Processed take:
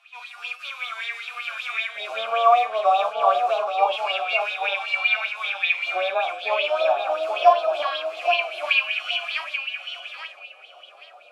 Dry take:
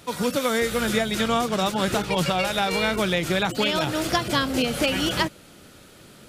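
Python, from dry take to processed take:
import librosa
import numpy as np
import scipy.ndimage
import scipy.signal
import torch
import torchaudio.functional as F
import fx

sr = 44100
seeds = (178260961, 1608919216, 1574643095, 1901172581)

y = fx.low_shelf(x, sr, hz=71.0, db=-9.0)
y = fx.filter_lfo_highpass(y, sr, shape='square', hz=0.46, low_hz=570.0, high_hz=2000.0, q=3.0)
y = fx.high_shelf(y, sr, hz=5000.0, db=7.5)
y = fx.hum_notches(y, sr, base_hz=60, count=4)
y = fx.stretch_vocoder(y, sr, factor=1.8)
y = fx.vowel_filter(y, sr, vowel='a')
y = fx.doubler(y, sr, ms=41.0, db=-6)
y = fx.echo_feedback(y, sr, ms=831, feedback_pct=18, wet_db=-5.5)
y = fx.bell_lfo(y, sr, hz=5.2, low_hz=840.0, high_hz=3800.0, db=14)
y = y * librosa.db_to_amplitude(1.5)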